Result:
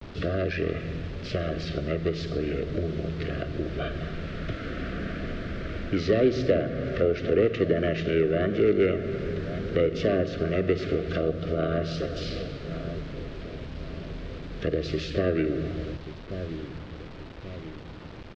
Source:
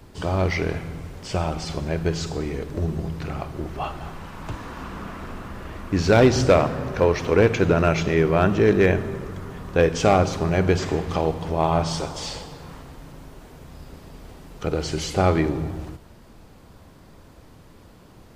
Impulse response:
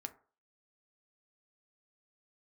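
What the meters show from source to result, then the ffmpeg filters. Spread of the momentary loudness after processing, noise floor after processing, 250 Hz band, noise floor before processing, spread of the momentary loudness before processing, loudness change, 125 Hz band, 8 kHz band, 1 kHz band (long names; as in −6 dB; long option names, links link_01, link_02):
15 LU, −41 dBFS, −4.0 dB, −49 dBFS, 18 LU, −6.0 dB, −6.0 dB, below −15 dB, −13.5 dB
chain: -filter_complex "[0:a]asplit=2[link_01][link_02];[link_02]adelay=1133,lowpass=frequency=980:poles=1,volume=-18dB,asplit=2[link_03][link_04];[link_04]adelay=1133,lowpass=frequency=980:poles=1,volume=0.51,asplit=2[link_05][link_06];[link_06]adelay=1133,lowpass=frequency=980:poles=1,volume=0.51,asplit=2[link_07][link_08];[link_08]adelay=1133,lowpass=frequency=980:poles=1,volume=0.51[link_09];[link_01][link_03][link_05][link_07][link_09]amix=inputs=5:normalize=0,acrossover=split=360|830[link_10][link_11][link_12];[link_10]acompressor=threshold=-34dB:ratio=8[link_13];[link_12]aeval=exprs='val(0)*sin(2*PI*370*n/s)':channel_layout=same[link_14];[link_13][link_11][link_14]amix=inputs=3:normalize=0,asuperstop=centerf=900:order=12:qfactor=2,acrusher=bits=7:mix=0:aa=0.000001,acrossover=split=380[link_15][link_16];[link_16]acompressor=threshold=-36dB:ratio=3[link_17];[link_15][link_17]amix=inputs=2:normalize=0,lowpass=frequency=4300:width=0.5412,lowpass=frequency=4300:width=1.3066,volume=4.5dB"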